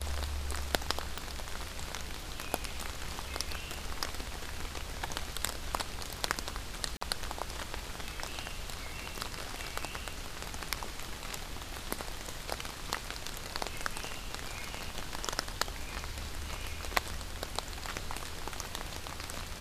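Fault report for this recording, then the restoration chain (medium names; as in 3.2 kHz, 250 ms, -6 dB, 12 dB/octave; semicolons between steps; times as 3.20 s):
1.18 s: pop
6.97–7.01 s: dropout 44 ms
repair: de-click; interpolate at 6.97 s, 44 ms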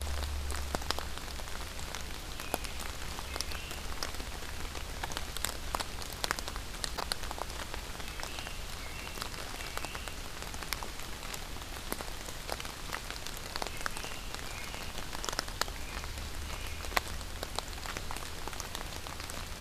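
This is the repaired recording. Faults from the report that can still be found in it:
nothing left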